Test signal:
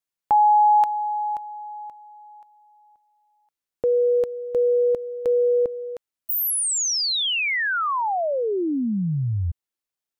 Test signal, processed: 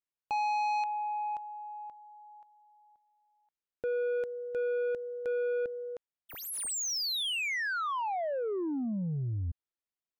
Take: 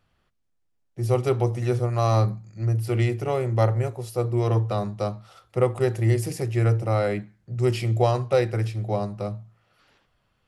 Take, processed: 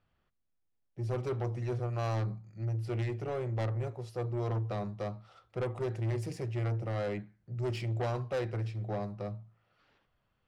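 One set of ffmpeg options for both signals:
-af "adynamicsmooth=sensitivity=4.5:basefreq=5.1k,asoftclip=type=tanh:threshold=-21.5dB,volume=-7dB"

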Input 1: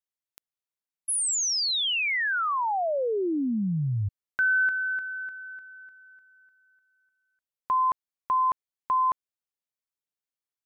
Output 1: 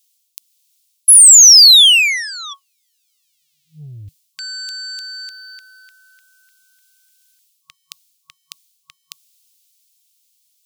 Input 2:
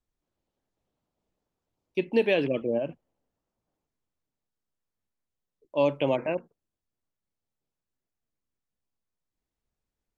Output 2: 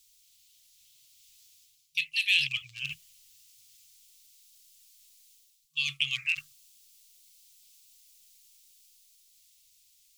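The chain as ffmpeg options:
-af "areverse,acompressor=threshold=-34dB:ratio=10:attack=0.13:release=691:knee=6:detection=peak,areverse,afftfilt=real='re*(1-between(b*sr/4096,160,1100))':imag='im*(1-between(b*sr/4096,160,1100))':win_size=4096:overlap=0.75,aeval=exprs='0.0316*(cos(1*acos(clip(val(0)/0.0316,-1,1)))-cos(1*PI/2))+0.00126*(cos(5*acos(clip(val(0)/0.0316,-1,1)))-cos(5*PI/2))':c=same,dynaudnorm=f=120:g=21:m=4.5dB,aexciter=amount=12:drive=9.7:freq=2.4k,volume=-2dB"

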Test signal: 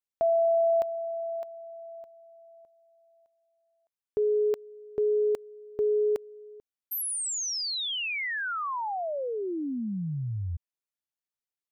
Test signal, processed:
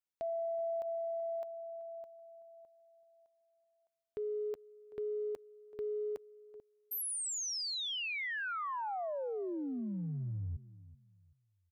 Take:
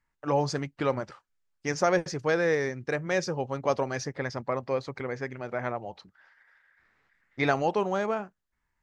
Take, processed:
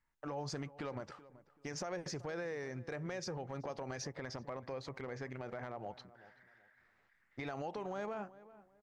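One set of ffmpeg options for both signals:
-filter_complex "[0:a]equalizer=f=730:t=o:w=0.77:g=2,acompressor=threshold=-31dB:ratio=6:attack=0.27:release=68:knee=1:detection=rms,asplit=2[a][b];[b]adelay=381,lowpass=f=1.7k:p=1,volume=-17dB,asplit=2[c][d];[d]adelay=381,lowpass=f=1.7k:p=1,volume=0.3,asplit=2[e][f];[f]adelay=381,lowpass=f=1.7k:p=1,volume=0.3[g];[a][c][e][g]amix=inputs=4:normalize=0,volume=-4.5dB"

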